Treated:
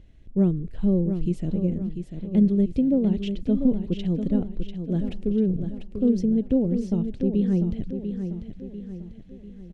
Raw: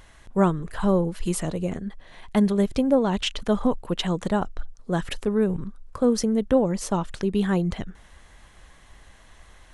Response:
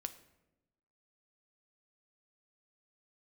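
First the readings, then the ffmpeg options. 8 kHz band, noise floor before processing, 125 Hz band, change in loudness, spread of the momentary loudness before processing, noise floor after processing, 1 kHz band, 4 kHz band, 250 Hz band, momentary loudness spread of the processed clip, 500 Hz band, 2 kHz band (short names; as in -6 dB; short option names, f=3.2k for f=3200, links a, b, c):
under -20 dB, -52 dBFS, +2.5 dB, 0.0 dB, 10 LU, -45 dBFS, under -15 dB, under -10 dB, +2.5 dB, 15 LU, -5.0 dB, under -15 dB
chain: -filter_complex "[0:a]firequalizer=gain_entry='entry(270,0);entry(1000,-28);entry(2500,-14);entry(10000,-29)':delay=0.05:min_phase=1,asplit=2[a][b];[b]aecho=0:1:694|1388|2082|2776|3470:0.398|0.183|0.0842|0.0388|0.0178[c];[a][c]amix=inputs=2:normalize=0,volume=1.5dB"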